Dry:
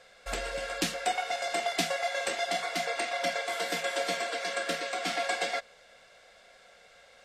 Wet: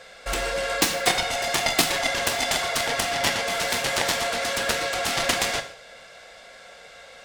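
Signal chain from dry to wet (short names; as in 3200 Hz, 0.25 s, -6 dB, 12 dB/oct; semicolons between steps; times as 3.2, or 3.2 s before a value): added harmonics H 7 -10 dB, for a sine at -14 dBFS; non-linear reverb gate 0.19 s falling, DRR 6.5 dB; gain +8.5 dB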